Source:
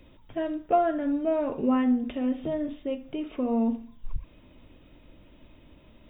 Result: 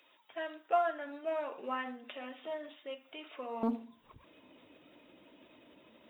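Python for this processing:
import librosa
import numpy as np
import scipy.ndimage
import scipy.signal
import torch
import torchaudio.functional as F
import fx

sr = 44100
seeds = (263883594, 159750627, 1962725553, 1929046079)

y = fx.spec_quant(x, sr, step_db=15)
y = fx.highpass(y, sr, hz=fx.steps((0.0, 950.0), (3.63, 300.0)), slope=12)
y = fx.quant_float(y, sr, bits=6)
y = fx.doppler_dist(y, sr, depth_ms=0.24)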